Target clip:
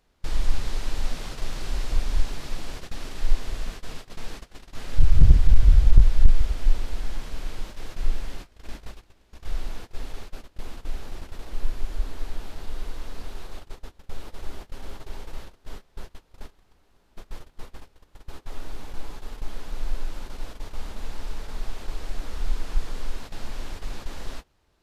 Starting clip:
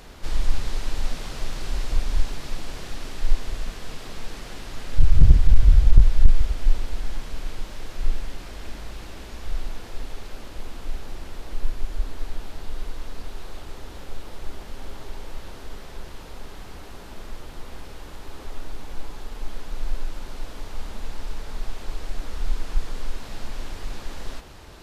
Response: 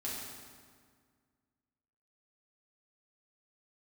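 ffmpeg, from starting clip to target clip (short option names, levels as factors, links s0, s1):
-af "agate=range=0.0794:threshold=0.0282:ratio=16:detection=peak,volume=0.891"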